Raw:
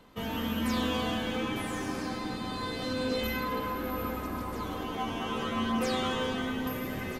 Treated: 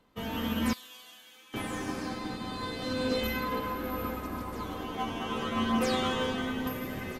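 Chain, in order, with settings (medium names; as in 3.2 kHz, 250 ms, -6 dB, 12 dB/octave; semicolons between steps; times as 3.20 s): 0.73–1.54 s: differentiator; upward expansion 1.5:1, over -51 dBFS; trim +2.5 dB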